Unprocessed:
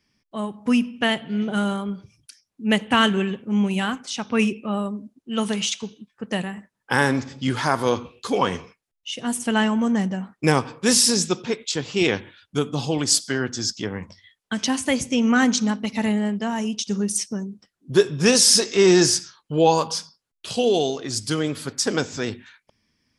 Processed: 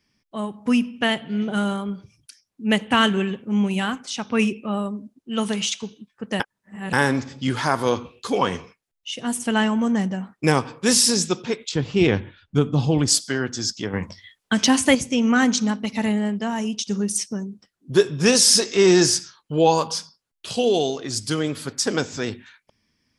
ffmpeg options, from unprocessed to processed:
-filter_complex "[0:a]asettb=1/sr,asplit=3[s0][s1][s2];[s0]atrim=end=11.694[s3];[s1]atrim=start=11.69:end=13.08,asetpts=PTS-STARTPTS,afade=t=in:d=0.004:c=qsin,afade=t=out:st=1.386:d=0.004:c=qsin,aemphasis=mode=reproduction:type=bsi[s4];[s2]atrim=start=13.076[s5];[s3][s4]acrossfade=d=0.004:c1=hsin:c2=qsin[s6];[s6][s5]acrossfade=d=0.004:c1=qsin:c2=hsin,asettb=1/sr,asplit=3[s7][s8][s9];[s7]atrim=end=13.934[s10];[s8]atrim=start=13.93:end=14.95,asetpts=PTS-STARTPTS,afade=t=in:d=0.004:c=qsin,afade=t=out:st=1.016:d=0.004:c=qsin,acontrast=53[s11];[s9]atrim=start=14.946[s12];[s10][s11]acrossfade=d=0.004:c1=hsin:c2=qsin[s13];[s13][s12]acrossfade=d=0.004:c1=qsin:c2=hsin,asplit=3[s14][s15][s16];[s14]atrim=end=6.402[s17];[s15]atrim=start=6.398:end=6.932,asetpts=PTS-STARTPTS,areverse[s18];[s16]atrim=start=6.928[s19];[s17][s18]acrossfade=d=0.004:c1=hsin:c2=hsin[s20];[s20][s19]acrossfade=d=0.004:c1=hsin:c2=hsin"

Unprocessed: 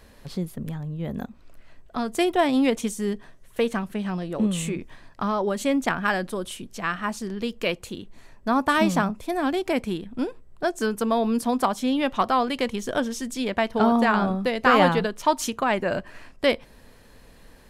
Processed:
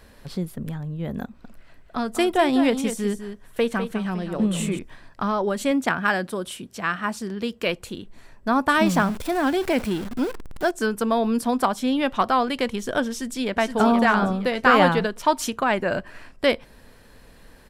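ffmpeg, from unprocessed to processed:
-filter_complex "[0:a]asettb=1/sr,asplit=3[s0][s1][s2];[s0]atrim=end=1.244[s3];[s1]atrim=start=1.24:end=4.79,asetpts=PTS-STARTPTS,afade=t=in:d=0.004:c=qsin,afade=t=out:st=3.546:d=0.004:c=qsin,aecho=1:1:201:0.335,atrim=end_sample=156555[s4];[s2]atrim=start=4.786[s5];[s3][s4]acrossfade=d=0.004:c1=hsin:c2=qsin[s6];[s6][s5]acrossfade=d=0.004:c1=qsin:c2=hsin,asettb=1/sr,asplit=3[s7][s8][s9];[s7]atrim=end=5.714[s10];[s8]atrim=start=5.71:end=7.66,asetpts=PTS-STARTPTS,afade=t=in:d=0.004:c=qsin,afade=t=out:st=1.946:d=0.004:c=qsin,highpass=69[s11];[s9]atrim=start=7.656[s12];[s10][s11]acrossfade=d=0.004:c1=hsin:c2=qsin[s13];[s13][s12]acrossfade=d=0.004:c1=qsin:c2=hsin,asettb=1/sr,asplit=3[s14][s15][s16];[s14]atrim=end=8.864[s17];[s15]atrim=start=8.86:end=10.71,asetpts=PTS-STARTPTS,afade=t=in:d=0.004:c=qsin,afade=t=out:st=1.846:d=0.004:c=qsin,aeval=exprs='val(0)+0.5*0.0282*sgn(val(0))':c=same[s18];[s16]atrim=start=10.706[s19];[s17][s18]acrossfade=d=0.004:c1=hsin:c2=qsin[s20];[s20][s19]acrossfade=d=0.004:c1=qsin:c2=hsin,asplit=2[s21][s22];[s22]afade=t=in:st=13.09:d=0.01,afade=t=out:st=13.77:d=0.01,aecho=0:1:470|940|1410|1880:0.501187|0.150356|0.0451069|0.0135321[s23];[s21][s23]amix=inputs=2:normalize=0,equalizer=f=1500:w=4.6:g=3,bandreject=f=6500:w=19,volume=1.12"

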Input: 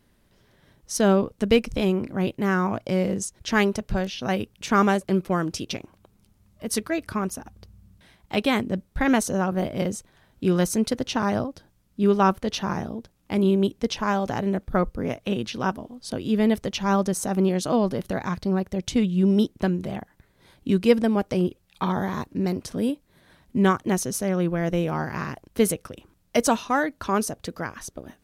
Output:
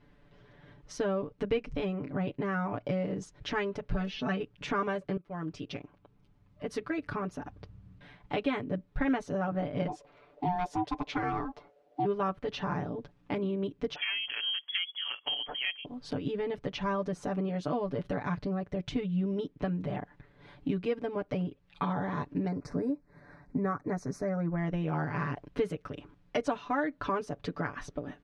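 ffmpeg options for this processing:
-filter_complex "[0:a]asettb=1/sr,asplit=3[s0][s1][s2];[s0]atrim=end=3.944[s3];[s1]atrim=start=3.94:end=4.43,asetpts=PTS-STARTPTS,afade=t=in:d=0.004:c=qsin,afade=t=out:st=0.486:d=0.004:c=qsin,aecho=1:1:4.6:0.95,atrim=end_sample=21609[s4];[s2]atrim=start=4.426[s5];[s3][s4]acrossfade=d=0.004:c1=hsin:c2=qsin[s6];[s6][s5]acrossfade=d=0.004:c1=qsin:c2=hsin,asplit=3[s7][s8][s9];[s7]afade=t=out:st=9.87:d=0.02[s10];[s8]aeval=exprs='val(0)*sin(2*PI*540*n/s)':c=same,afade=t=in:st=9.87:d=0.02,afade=t=out:st=12.04:d=0.02[s11];[s9]afade=t=in:st=12.04:d=0.02[s12];[s10][s11][s12]amix=inputs=3:normalize=0,asettb=1/sr,asplit=3[s13][s14][s15];[s13]atrim=end=13.954[s16];[s14]atrim=start=13.95:end=15.85,asetpts=PTS-STARTPTS,afade=t=in:d=0.004:c=qsin,afade=t=out:st=1.896:d=0.004:c=qsin,lowpass=f=2900:t=q:w=0.5098,lowpass=f=2900:t=q:w=0.6013,lowpass=f=2900:t=q:w=0.9,lowpass=f=2900:t=q:w=2.563,afreqshift=-3400[s17];[s15]atrim=start=15.846[s18];[s16][s17]acrossfade=d=0.004:c1=hsin:c2=qsin[s19];[s19][s18]acrossfade=d=0.004:c1=qsin:c2=hsin,asettb=1/sr,asplit=3[s20][s21][s22];[s20]atrim=end=22.484[s23];[s21]atrim=start=22.48:end=24.58,asetpts=PTS-STARTPTS,afade=t=in:d=0.004:c=qsin,afade=t=out:st=2.096:d=0.004:c=qsin,asuperstop=centerf=3100:order=4:qfactor=1.3[s24];[s22]atrim=start=24.576[s25];[s23][s24]acrossfade=d=0.004:c1=hsin:c2=qsin[s26];[s26][s25]acrossfade=d=0.004:c1=qsin:c2=hsin,asplit=2[s27][s28];[s27]atrim=end=5.17,asetpts=PTS-STARTPTS,afade=t=out:st=5.166:d=0.004:c=hsin:silence=0.141254[s29];[s28]atrim=start=5.17,asetpts=PTS-STARTPTS,afade=t=in:d=2.21:silence=0.141254[s30];[s29][s30]concat=n=2:v=0:a=1,acompressor=threshold=0.0224:ratio=3,lowpass=2700,aecho=1:1:6.9:0.95"

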